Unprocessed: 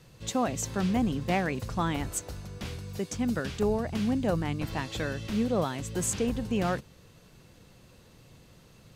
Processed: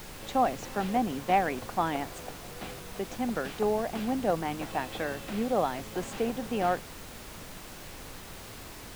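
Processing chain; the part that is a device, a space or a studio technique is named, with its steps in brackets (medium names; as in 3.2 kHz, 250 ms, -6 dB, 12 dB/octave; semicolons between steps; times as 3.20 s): horn gramophone (band-pass 250–3100 Hz; peaking EQ 750 Hz +8 dB 0.4 oct; wow and flutter; pink noise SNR 12 dB)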